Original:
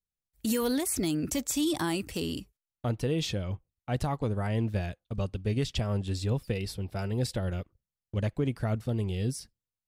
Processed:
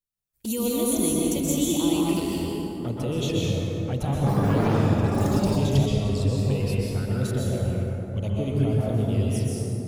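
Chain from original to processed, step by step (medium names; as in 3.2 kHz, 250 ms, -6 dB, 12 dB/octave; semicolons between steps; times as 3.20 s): treble shelf 8.2 kHz +7.5 dB; touch-sensitive flanger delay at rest 9.4 ms, full sweep at -26.5 dBFS; plate-style reverb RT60 3.5 s, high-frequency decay 0.4×, pre-delay 110 ms, DRR -5.5 dB; 4.10–6.35 s: ever faster or slower copies 166 ms, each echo +6 st, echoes 3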